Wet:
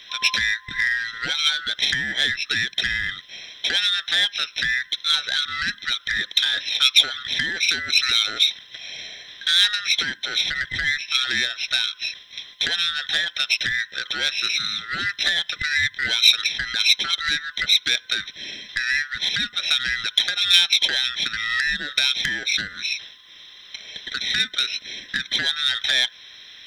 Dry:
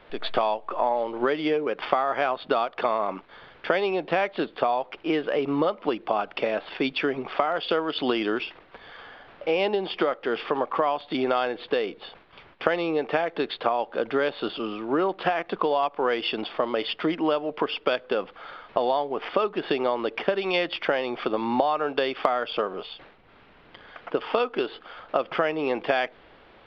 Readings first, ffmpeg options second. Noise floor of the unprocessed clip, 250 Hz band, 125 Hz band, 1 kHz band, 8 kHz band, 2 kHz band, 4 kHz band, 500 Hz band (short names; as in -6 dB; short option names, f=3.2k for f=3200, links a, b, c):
-54 dBFS, -14.0 dB, -0.5 dB, -10.0 dB, n/a, +11.0 dB, +17.0 dB, -21.0 dB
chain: -filter_complex "[0:a]afftfilt=real='real(if(lt(b,960),b+48*(1-2*mod(floor(b/48),2)),b),0)':imag='imag(if(lt(b,960),b+48*(1-2*mod(floor(b/48),2)),b),0)':win_size=2048:overlap=0.75,asplit=2[a][b];[b]alimiter=limit=-14.5dB:level=0:latency=1:release=475,volume=-0.5dB[c];[a][c]amix=inputs=2:normalize=0,aeval=exprs='0.841*(cos(1*acos(clip(val(0)/0.841,-1,1)))-cos(1*PI/2))+0.0531*(cos(5*acos(clip(val(0)/0.841,-1,1)))-cos(5*PI/2))+0.00668*(cos(6*acos(clip(val(0)/0.841,-1,1)))-cos(6*PI/2))':c=same,aexciter=amount=10.5:drive=7.9:freq=2.1k,volume=-14dB"